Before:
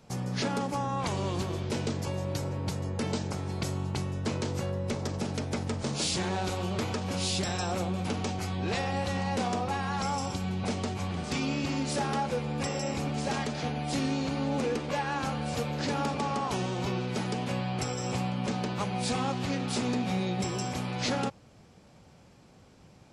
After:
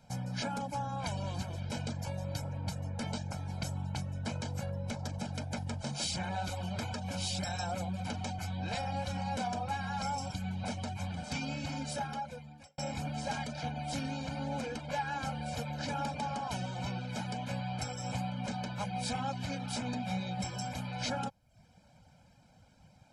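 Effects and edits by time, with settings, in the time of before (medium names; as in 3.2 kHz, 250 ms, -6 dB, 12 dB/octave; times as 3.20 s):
11.82–12.78 s: fade out linear
whole clip: reverb removal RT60 0.58 s; comb 1.3 ms, depth 83%; trim -6.5 dB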